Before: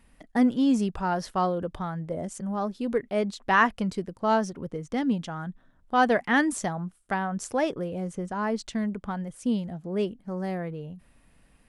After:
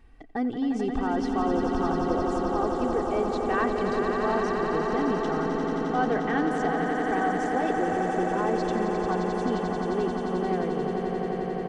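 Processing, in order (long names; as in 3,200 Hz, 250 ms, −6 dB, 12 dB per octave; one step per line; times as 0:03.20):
de-essing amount 70%
bass and treble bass 0 dB, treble +7 dB
comb filter 2.6 ms, depth 66%
in parallel at +2 dB: compressor whose output falls as the input rises −29 dBFS, ratio −1
on the sum: head-to-tape spacing loss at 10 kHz 28 dB
on a send: echo that builds up and dies away 88 ms, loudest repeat 8, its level −8 dB
on the sum: level −6.5 dB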